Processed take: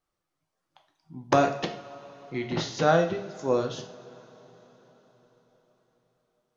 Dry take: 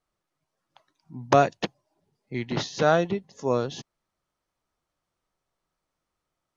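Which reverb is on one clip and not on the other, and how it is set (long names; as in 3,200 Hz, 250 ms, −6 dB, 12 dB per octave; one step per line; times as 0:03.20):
coupled-rooms reverb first 0.48 s, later 4.9 s, from −21 dB, DRR 4 dB
level −2.5 dB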